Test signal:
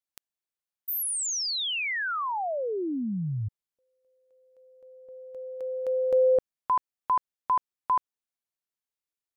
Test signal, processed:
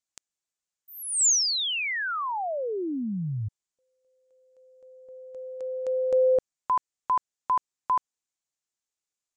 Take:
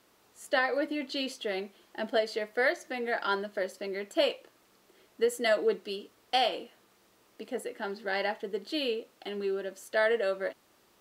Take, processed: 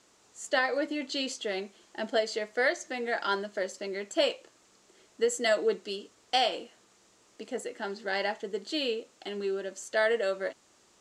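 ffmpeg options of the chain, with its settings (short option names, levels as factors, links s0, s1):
-af "lowpass=f=7200:t=q:w=3.2"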